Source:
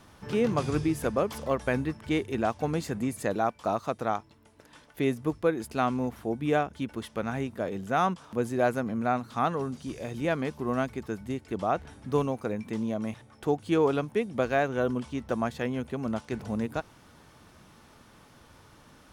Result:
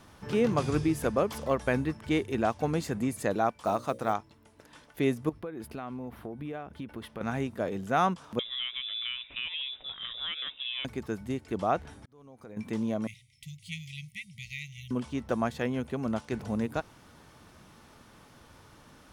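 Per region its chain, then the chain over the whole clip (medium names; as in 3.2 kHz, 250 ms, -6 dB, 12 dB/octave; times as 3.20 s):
3.60–4.13 s: peaking EQ 9.1 kHz +6 dB 0.29 oct + hum notches 60/120/180/240/300/360/420/480/540/600 Hz + short-mantissa float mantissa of 4-bit
5.29–7.21 s: peaking EQ 6.9 kHz -12 dB 1.1 oct + compression 10:1, threshold -34 dBFS
8.39–10.85 s: bass shelf 370 Hz -6.5 dB + compression 5:1, threshold -31 dBFS + frequency inversion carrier 3.7 kHz
11.98–12.57 s: band-stop 2.7 kHz + compression 3:1, threshold -41 dBFS + slow attack 718 ms
13.07–14.91 s: brick-wall FIR band-stop 190–1900 Hz + bass shelf 170 Hz -11 dB
whole clip: none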